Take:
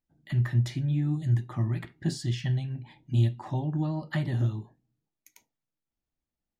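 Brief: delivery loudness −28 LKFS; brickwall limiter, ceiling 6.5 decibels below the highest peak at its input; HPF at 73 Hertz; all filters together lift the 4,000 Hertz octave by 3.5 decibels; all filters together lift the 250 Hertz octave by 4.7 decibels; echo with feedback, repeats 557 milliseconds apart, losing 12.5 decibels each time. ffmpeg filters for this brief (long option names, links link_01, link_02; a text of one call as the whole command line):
ffmpeg -i in.wav -af "highpass=73,equalizer=frequency=250:width_type=o:gain=7.5,equalizer=frequency=4000:width_type=o:gain=4.5,alimiter=limit=-18.5dB:level=0:latency=1,aecho=1:1:557|1114|1671:0.237|0.0569|0.0137,volume=1dB" out.wav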